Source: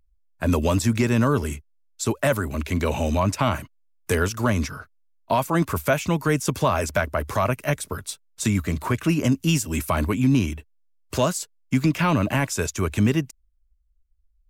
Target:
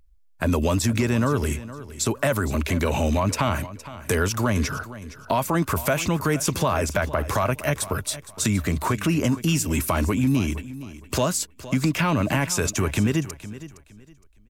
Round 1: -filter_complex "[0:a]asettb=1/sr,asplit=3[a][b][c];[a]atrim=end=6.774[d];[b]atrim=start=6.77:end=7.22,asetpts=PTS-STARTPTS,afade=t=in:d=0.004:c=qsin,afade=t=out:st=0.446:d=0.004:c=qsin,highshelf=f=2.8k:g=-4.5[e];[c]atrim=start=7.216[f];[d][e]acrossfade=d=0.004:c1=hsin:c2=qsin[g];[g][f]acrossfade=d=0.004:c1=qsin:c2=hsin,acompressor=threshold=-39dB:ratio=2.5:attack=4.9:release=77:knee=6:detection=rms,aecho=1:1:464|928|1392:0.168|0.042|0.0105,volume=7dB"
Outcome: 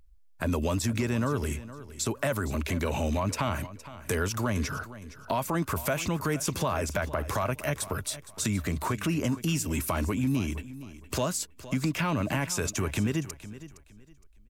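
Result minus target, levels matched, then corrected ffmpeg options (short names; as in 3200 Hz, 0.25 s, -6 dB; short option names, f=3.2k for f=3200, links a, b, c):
compressor: peak gain reduction +6.5 dB
-filter_complex "[0:a]asettb=1/sr,asplit=3[a][b][c];[a]atrim=end=6.774[d];[b]atrim=start=6.77:end=7.22,asetpts=PTS-STARTPTS,afade=t=in:d=0.004:c=qsin,afade=t=out:st=0.446:d=0.004:c=qsin,highshelf=f=2.8k:g=-4.5[e];[c]atrim=start=7.216[f];[d][e]acrossfade=d=0.004:c1=hsin:c2=qsin[g];[g][f]acrossfade=d=0.004:c1=qsin:c2=hsin,acompressor=threshold=-28.5dB:ratio=2.5:attack=4.9:release=77:knee=6:detection=rms,aecho=1:1:464|928|1392:0.168|0.042|0.0105,volume=7dB"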